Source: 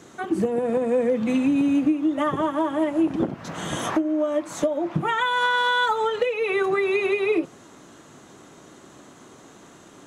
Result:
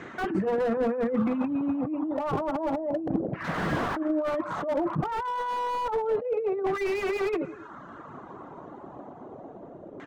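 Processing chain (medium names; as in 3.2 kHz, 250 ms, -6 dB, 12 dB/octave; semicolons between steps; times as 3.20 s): reverb removal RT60 0.81 s; feedback delay 111 ms, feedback 50%, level -23.5 dB; LFO low-pass saw down 0.3 Hz 560–2000 Hz; compressor with a negative ratio -27 dBFS, ratio -1; treble shelf 4.4 kHz +7 dB; slew-rate limiter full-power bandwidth 41 Hz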